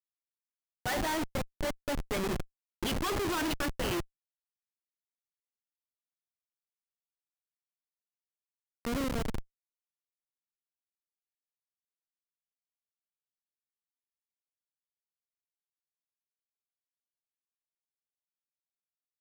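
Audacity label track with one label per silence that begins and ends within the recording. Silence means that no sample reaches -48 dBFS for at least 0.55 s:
4.030000	8.850000	silence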